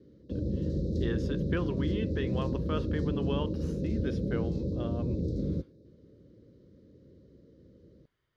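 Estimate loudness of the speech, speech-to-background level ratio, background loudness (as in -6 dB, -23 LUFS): -37.0 LUFS, -4.0 dB, -33.0 LUFS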